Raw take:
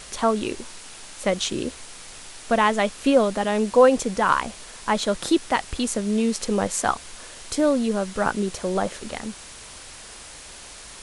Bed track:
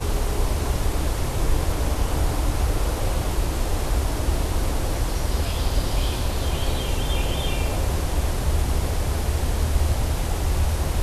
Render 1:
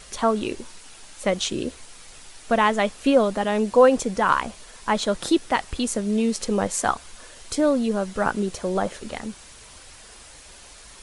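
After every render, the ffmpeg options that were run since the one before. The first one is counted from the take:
-af "afftdn=nr=6:nf=-42"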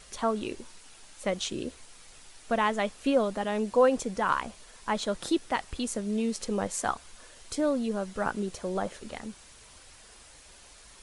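-af "volume=0.447"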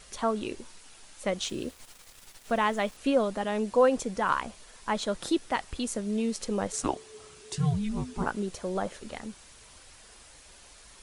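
-filter_complex "[0:a]asettb=1/sr,asplit=3[s0][s1][s2];[s0]atrim=end=1.434[s3];[s1]atrim=start=1.43:end=2.97,asetpts=PTS-STARTPTS,afade=t=in:d=0.004:c=qsin,afade=t=out:st=1.536:d=0.004:c=qsin,aeval=exprs='val(0)*gte(abs(val(0)),0.00376)':c=same[s4];[s2]atrim=start=2.966[s5];[s3][s4]acrossfade=d=0.004:c1=hsin:c2=qsin[s6];[s6][s5]acrossfade=d=0.004:c1=qsin:c2=hsin,asplit=3[s7][s8][s9];[s7]afade=t=out:st=6.72:d=0.02[s10];[s8]afreqshift=-440,afade=t=in:st=6.72:d=0.02,afade=t=out:st=8.25:d=0.02[s11];[s9]afade=t=in:st=8.25:d=0.02[s12];[s10][s11][s12]amix=inputs=3:normalize=0"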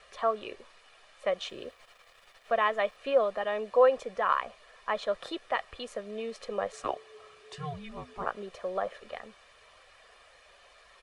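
-filter_complex "[0:a]acrossover=split=390 3500:gain=0.158 1 0.1[s0][s1][s2];[s0][s1][s2]amix=inputs=3:normalize=0,aecho=1:1:1.7:0.51"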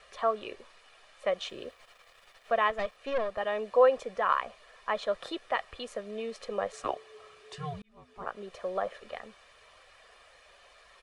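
-filter_complex "[0:a]asettb=1/sr,asplit=3[s0][s1][s2];[s0]atrim=end=2.704[s3];[s1]atrim=start=2.7:end=3.38,asetpts=PTS-STARTPTS,afade=t=in:d=0.004:c=qsin,afade=t=out:st=0.676:d=0.004:c=qsin,aeval=exprs='(tanh(17.8*val(0)+0.6)-tanh(0.6))/17.8':c=same[s4];[s2]atrim=start=3.376[s5];[s3][s4]acrossfade=d=0.004:c1=hsin:c2=qsin[s6];[s6][s5]acrossfade=d=0.004:c1=qsin:c2=hsin,asplit=2[s7][s8];[s7]atrim=end=7.82,asetpts=PTS-STARTPTS,afade=t=out:st=7.816:d=0.004:c=hsin[s9];[s8]atrim=start=7.82,asetpts=PTS-STARTPTS,afade=t=in:d=0.77[s10];[s9][s10]concat=n=2:v=0:a=1"

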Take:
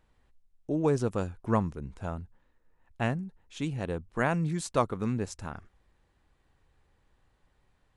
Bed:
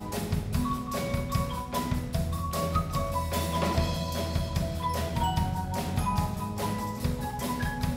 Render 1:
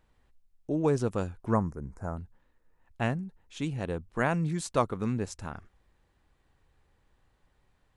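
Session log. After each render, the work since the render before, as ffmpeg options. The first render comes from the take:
-filter_complex "[0:a]asettb=1/sr,asplit=3[s0][s1][s2];[s0]atrim=end=1.534[s3];[s1]atrim=start=1.53:end=2.17,asetpts=PTS-STARTPTS,afade=t=in:d=0.004:c=qsin,afade=t=out:st=0.636:d=0.004:c=qsin,asuperstop=centerf=3200:order=4:qfactor=0.85[s4];[s2]atrim=start=2.166[s5];[s3][s4]acrossfade=d=0.004:c1=hsin:c2=qsin[s6];[s6][s5]acrossfade=d=0.004:c1=qsin:c2=hsin"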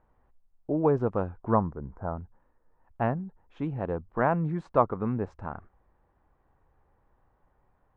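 -af "lowpass=1300,equalizer=f=900:t=o:w=1.8:g=6.5"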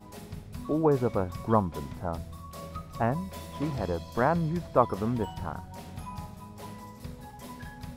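-filter_complex "[1:a]volume=0.251[s0];[0:a][s0]amix=inputs=2:normalize=0"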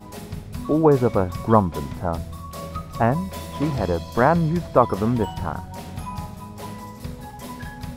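-af "volume=2.51,alimiter=limit=0.794:level=0:latency=1"

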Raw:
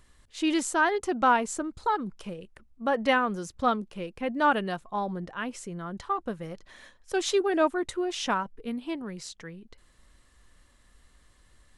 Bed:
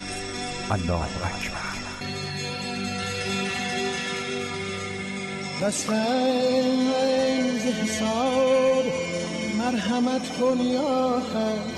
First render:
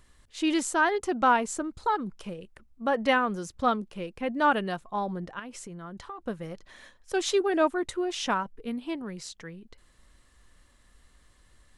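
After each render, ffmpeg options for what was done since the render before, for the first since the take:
-filter_complex "[0:a]asettb=1/sr,asplit=3[s0][s1][s2];[s0]atrim=end=5.394[s3];[s1]atrim=start=5.39:end=6.26,asetpts=PTS-STARTPTS,afade=t=in:d=0.004:c=qsin,afade=t=out:st=0.866:d=0.004:c=qsin,acompressor=threshold=0.0141:ratio=6:attack=3.2:release=140:knee=1:detection=peak[s4];[s2]atrim=start=6.256[s5];[s3][s4]acrossfade=d=0.004:c1=hsin:c2=qsin[s6];[s6][s5]acrossfade=d=0.004:c1=qsin:c2=hsin"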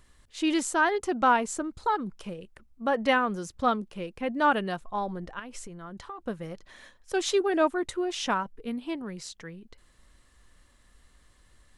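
-filter_complex "[0:a]asplit=3[s0][s1][s2];[s0]afade=t=out:st=4.81:d=0.02[s3];[s1]asubboost=boost=3.5:cutoff=72,afade=t=in:st=4.81:d=0.02,afade=t=out:st=5.9:d=0.02[s4];[s2]afade=t=in:st=5.9:d=0.02[s5];[s3][s4][s5]amix=inputs=3:normalize=0"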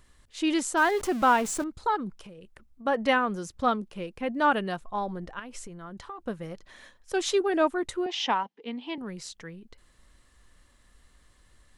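-filter_complex "[0:a]asettb=1/sr,asplit=3[s0][s1][s2];[s0]atrim=end=0.774[s3];[s1]atrim=start=0.77:end=1.64,asetpts=PTS-STARTPTS,afade=t=in:d=0.004:c=qsin,afade=t=out:st=0.866:d=0.004:c=qsin,aeval=exprs='val(0)+0.5*0.0188*sgn(val(0))':c=same[s4];[s2]atrim=start=1.636[s5];[s3][s4]acrossfade=d=0.004:c1=hsin:c2=qsin[s6];[s6][s5]acrossfade=d=0.004:c1=qsin:c2=hsin,asplit=3[s7][s8][s9];[s7]afade=t=out:st=2.18:d=0.02[s10];[s8]acompressor=threshold=0.00708:ratio=6:attack=3.2:release=140:knee=1:detection=peak,afade=t=in:st=2.18:d=0.02,afade=t=out:st=2.85:d=0.02[s11];[s9]afade=t=in:st=2.85:d=0.02[s12];[s10][s11][s12]amix=inputs=3:normalize=0,asettb=1/sr,asplit=3[s13][s14][s15];[s13]atrim=end=8.064[s16];[s14]atrim=start=8.06:end=8.98,asetpts=PTS-STARTPTS,afade=t=in:d=0.004:c=qsin,afade=t=out:st=0.916:d=0.004:c=qsin,highpass=f=230:w=0.5412,highpass=f=230:w=1.3066,equalizer=f=350:t=q:w=4:g=-4,equalizer=f=600:t=q:w=4:g=-4,equalizer=f=850:t=q:w=4:g=8,equalizer=f=1400:t=q:w=4:g=-6,equalizer=f=2000:t=q:w=4:g=4,equalizer=f=3100:t=q:w=4:g=6,lowpass=f=5800:w=0.5412,lowpass=f=5800:w=1.3066[s17];[s15]atrim=start=8.976[s18];[s16][s17]acrossfade=d=0.004:c1=hsin:c2=qsin[s19];[s19][s18]acrossfade=d=0.004:c1=qsin:c2=hsin"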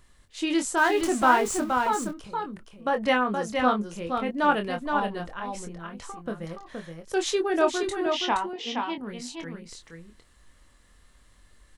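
-filter_complex "[0:a]asplit=2[s0][s1];[s1]adelay=24,volume=0.473[s2];[s0][s2]amix=inputs=2:normalize=0,aecho=1:1:471:0.562"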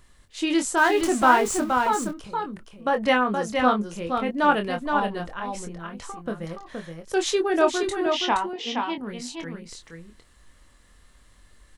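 -af "volume=1.33"

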